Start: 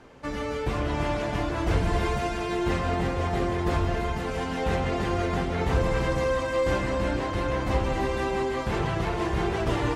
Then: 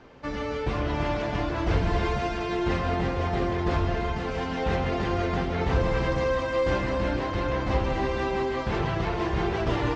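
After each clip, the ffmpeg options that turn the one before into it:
-af "lowpass=f=5900:w=0.5412,lowpass=f=5900:w=1.3066"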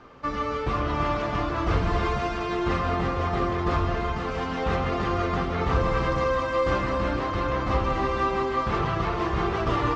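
-af "equalizer=f=1200:w=6.6:g=13.5"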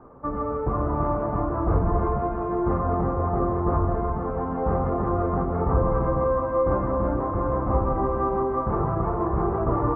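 -af "lowpass=f=1100:w=0.5412,lowpass=f=1100:w=1.3066,volume=1.33"

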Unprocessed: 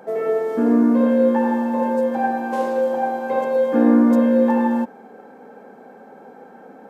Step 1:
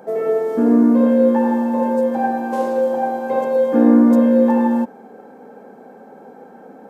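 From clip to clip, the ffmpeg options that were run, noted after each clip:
-af "equalizer=f=2200:t=o:w=2.4:g=-5,volume=1.41"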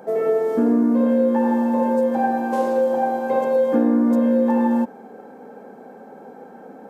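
-af "acompressor=threshold=0.2:ratio=6"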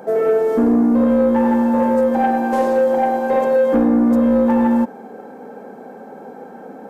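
-af "asoftclip=type=tanh:threshold=0.224,volume=1.78"

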